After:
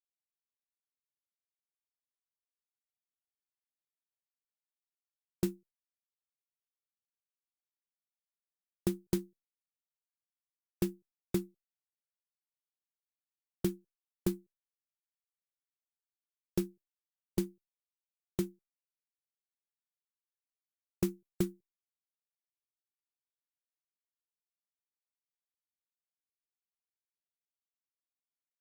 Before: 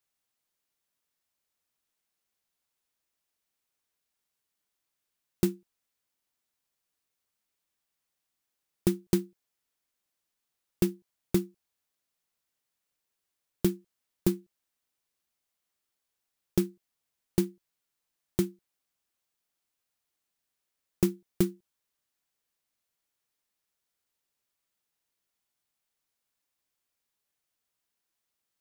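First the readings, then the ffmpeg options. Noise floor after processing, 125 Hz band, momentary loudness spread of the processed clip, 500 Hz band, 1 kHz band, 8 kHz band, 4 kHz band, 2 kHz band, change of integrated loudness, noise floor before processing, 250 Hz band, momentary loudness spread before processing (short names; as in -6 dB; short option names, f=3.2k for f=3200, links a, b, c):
under -85 dBFS, -6.0 dB, 7 LU, -6.0 dB, -5.0 dB, -6.0 dB, -6.0 dB, -5.5 dB, -6.0 dB, -84 dBFS, -6.0 dB, 7 LU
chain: -af "agate=range=-33dB:threshold=-54dB:ratio=3:detection=peak,afftdn=nr=32:nf=-58,adynamicequalizer=threshold=0.0158:dfrequency=240:dqfactor=0.9:tfrequency=240:tqfactor=0.9:attack=5:release=100:ratio=0.375:range=2.5:mode=cutabove:tftype=bell,volume=-6dB" -ar 48000 -c:a libopus -b:a 64k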